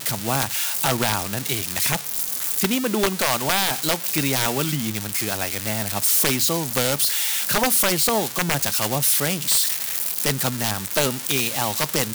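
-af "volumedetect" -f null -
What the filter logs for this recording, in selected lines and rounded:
mean_volume: -22.5 dB
max_volume: -10.6 dB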